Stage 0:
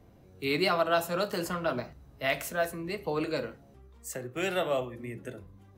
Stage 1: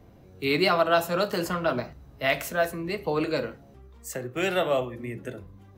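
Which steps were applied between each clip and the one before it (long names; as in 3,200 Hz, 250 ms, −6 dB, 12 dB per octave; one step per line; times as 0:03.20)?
parametric band 9,500 Hz −4 dB 0.88 octaves
level +4.5 dB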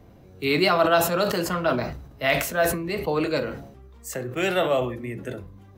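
level that may fall only so fast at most 70 dB per second
level +2 dB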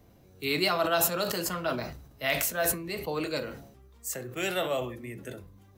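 high-shelf EQ 4,100 Hz +11.5 dB
level −8 dB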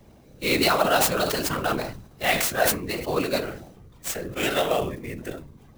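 random phases in short frames
converter with an unsteady clock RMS 0.02 ms
level +6 dB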